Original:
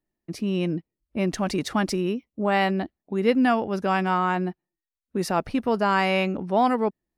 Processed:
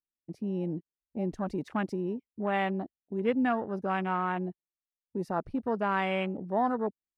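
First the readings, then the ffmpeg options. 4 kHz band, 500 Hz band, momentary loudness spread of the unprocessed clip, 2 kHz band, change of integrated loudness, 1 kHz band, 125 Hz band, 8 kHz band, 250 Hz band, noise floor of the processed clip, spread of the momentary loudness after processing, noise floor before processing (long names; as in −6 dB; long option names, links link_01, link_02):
−12.5 dB, −7.0 dB, 9 LU, −8.0 dB, −7.0 dB, −7.0 dB, −7.0 dB, below −20 dB, −7.0 dB, below −85 dBFS, 10 LU, below −85 dBFS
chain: -af "afwtdn=0.0316,volume=-7dB"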